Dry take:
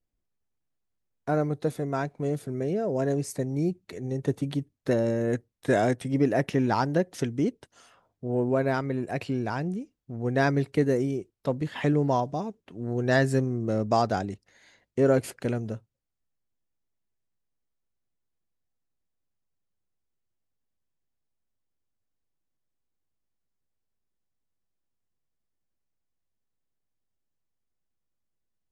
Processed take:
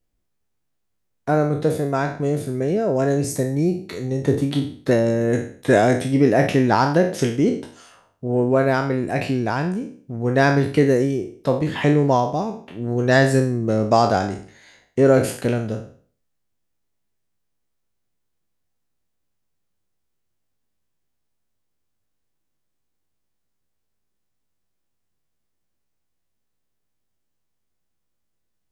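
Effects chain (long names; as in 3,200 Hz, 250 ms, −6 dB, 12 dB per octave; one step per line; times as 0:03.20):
peak hold with a decay on every bin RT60 0.47 s
level +6.5 dB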